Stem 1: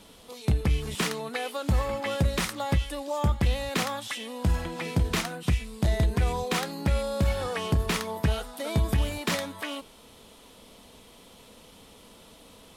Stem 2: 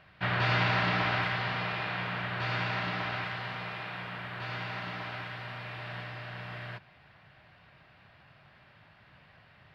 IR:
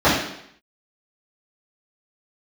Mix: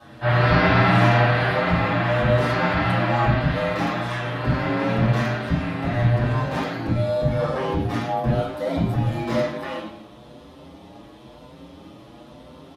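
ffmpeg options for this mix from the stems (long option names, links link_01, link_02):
-filter_complex "[0:a]alimiter=limit=-21.5dB:level=0:latency=1:release=68,aeval=exprs='val(0)*sin(2*PI*53*n/s)':channel_layout=same,volume=-1.5dB,asplit=2[link_01][link_02];[link_02]volume=-11dB[link_03];[1:a]highshelf=frequency=5600:gain=7.5,volume=-6dB,asplit=2[link_04][link_05];[link_05]volume=-6dB[link_06];[2:a]atrim=start_sample=2205[link_07];[link_03][link_06]amix=inputs=2:normalize=0[link_08];[link_08][link_07]afir=irnorm=-1:irlink=0[link_09];[link_01][link_04][link_09]amix=inputs=3:normalize=0,highshelf=frequency=4600:gain=-6.5,asplit=2[link_10][link_11];[link_11]adelay=6.8,afreqshift=1[link_12];[link_10][link_12]amix=inputs=2:normalize=1"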